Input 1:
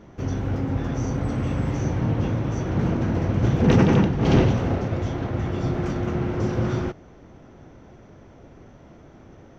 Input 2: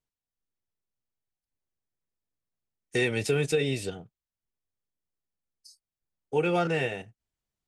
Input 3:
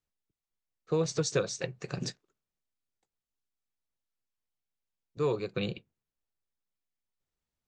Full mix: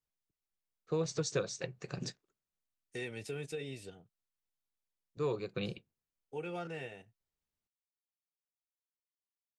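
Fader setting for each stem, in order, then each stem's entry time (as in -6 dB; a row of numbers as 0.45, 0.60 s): off, -15.0 dB, -5.0 dB; off, 0.00 s, 0.00 s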